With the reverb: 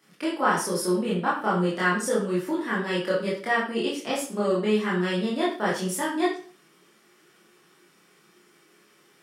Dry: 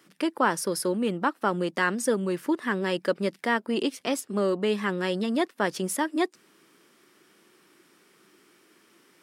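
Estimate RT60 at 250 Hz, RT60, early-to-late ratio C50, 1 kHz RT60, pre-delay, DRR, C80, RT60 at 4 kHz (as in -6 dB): 0.45 s, 0.45 s, 4.0 dB, 0.45 s, 20 ms, -7.5 dB, 9.5 dB, 0.40 s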